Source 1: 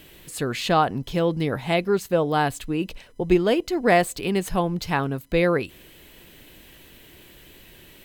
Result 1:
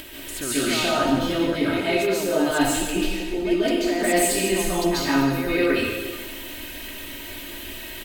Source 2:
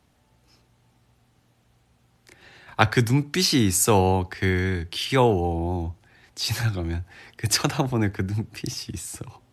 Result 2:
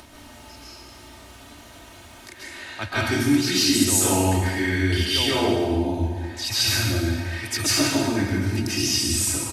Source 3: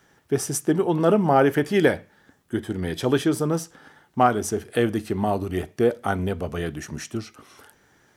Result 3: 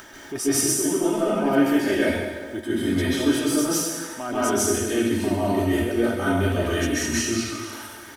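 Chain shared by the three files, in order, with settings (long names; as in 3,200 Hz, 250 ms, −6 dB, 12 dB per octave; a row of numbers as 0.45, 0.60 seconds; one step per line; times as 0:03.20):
in parallel at −10 dB: hard clipping −16.5 dBFS
on the sum: comb filter 3.2 ms, depth 62%
reversed playback
downward compressor 6 to 1, threshold −25 dBFS
reversed playback
low-shelf EQ 410 Hz −5.5 dB
dense smooth reverb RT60 1.3 s, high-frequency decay 0.95×, pre-delay 120 ms, DRR −10 dB
upward compression, threshold −34 dBFS
dynamic equaliser 950 Hz, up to −5 dB, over −36 dBFS, Q 1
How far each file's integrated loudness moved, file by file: +1.0, +2.0, +0.5 LU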